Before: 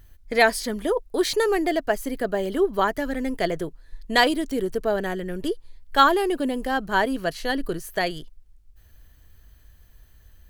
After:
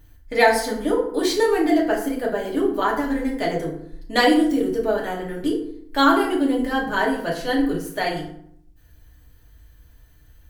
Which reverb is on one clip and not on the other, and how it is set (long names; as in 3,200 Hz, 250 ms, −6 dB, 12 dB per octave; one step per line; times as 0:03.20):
feedback delay network reverb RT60 0.67 s, low-frequency decay 1.35×, high-frequency decay 0.6×, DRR −3.5 dB
level −3.5 dB